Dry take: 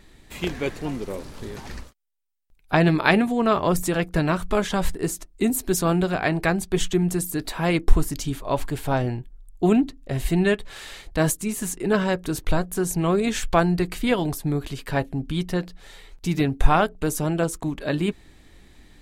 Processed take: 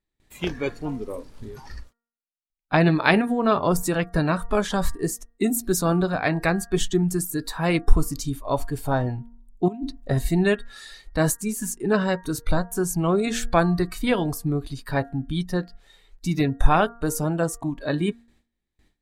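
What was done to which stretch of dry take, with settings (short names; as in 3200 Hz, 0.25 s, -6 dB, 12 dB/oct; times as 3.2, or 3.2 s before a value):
9.68–10.19 negative-ratio compressor -24 dBFS, ratio -0.5
whole clip: gate with hold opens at -39 dBFS; spectral noise reduction 12 dB; de-hum 233.7 Hz, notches 8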